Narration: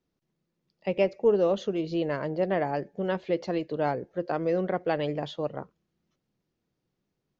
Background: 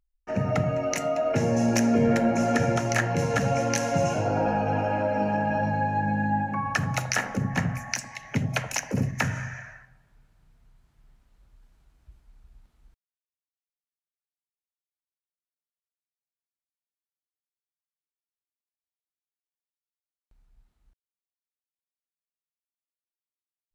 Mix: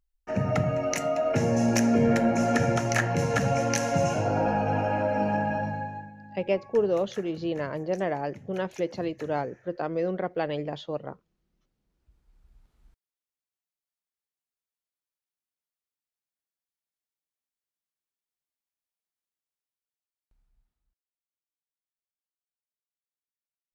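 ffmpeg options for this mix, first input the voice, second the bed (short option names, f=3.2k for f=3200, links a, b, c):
-filter_complex "[0:a]adelay=5500,volume=-1.5dB[a];[1:a]volume=20.5dB,afade=t=out:st=5.36:d=0.75:silence=0.0891251,afade=t=in:st=11.82:d=1.29:silence=0.0891251,afade=t=out:st=19.31:d=1.65:silence=0.133352[b];[a][b]amix=inputs=2:normalize=0"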